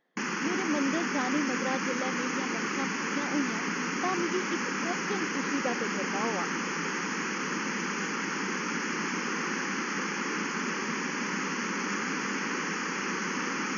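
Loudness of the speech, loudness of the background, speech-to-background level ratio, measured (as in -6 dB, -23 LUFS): -35.0 LUFS, -31.0 LUFS, -4.0 dB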